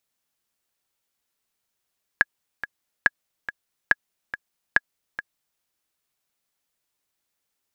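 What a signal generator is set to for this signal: metronome 141 bpm, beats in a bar 2, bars 4, 1.67 kHz, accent 13.5 dB -2.5 dBFS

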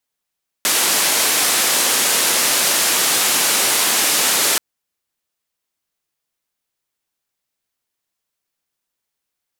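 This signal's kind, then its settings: noise band 240–12000 Hz, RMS -16.5 dBFS 3.93 s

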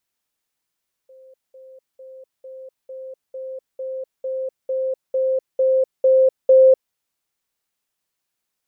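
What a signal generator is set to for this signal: level ladder 524 Hz -43.5 dBFS, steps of 3 dB, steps 13, 0.25 s 0.20 s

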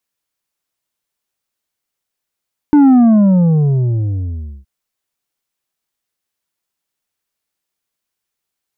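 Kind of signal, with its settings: sub drop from 300 Hz, over 1.92 s, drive 6 dB, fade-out 1.78 s, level -5.5 dB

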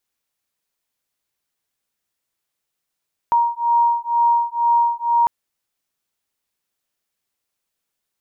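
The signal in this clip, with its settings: beating tones 940 Hz, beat 2.1 Hz, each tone -17.5 dBFS 1.95 s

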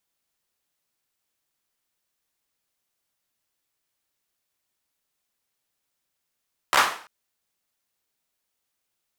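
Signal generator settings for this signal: hand clap length 0.34 s, apart 14 ms, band 1.1 kHz, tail 0.45 s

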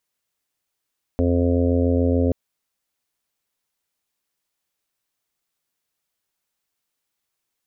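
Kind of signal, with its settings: steady additive tone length 1.13 s, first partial 87 Hz, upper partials -19.5/0/-14/-5/-5/-11.5/-19 dB, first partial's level -20 dB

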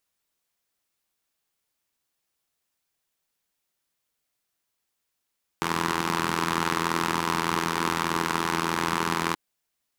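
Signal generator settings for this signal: four-cylinder engine model, steady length 3.73 s, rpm 2500, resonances 200/330/990 Hz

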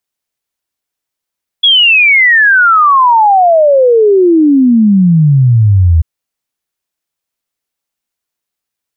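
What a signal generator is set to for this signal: log sweep 3.4 kHz -> 78 Hz 4.39 s -3.5 dBFS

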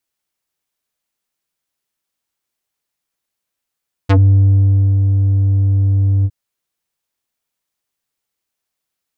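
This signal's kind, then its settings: synth note square G2 12 dB/octave, low-pass 160 Hz, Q 1.1, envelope 5.5 oct, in 0.09 s, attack 16 ms, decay 0.88 s, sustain -4.5 dB, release 0.05 s, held 2.16 s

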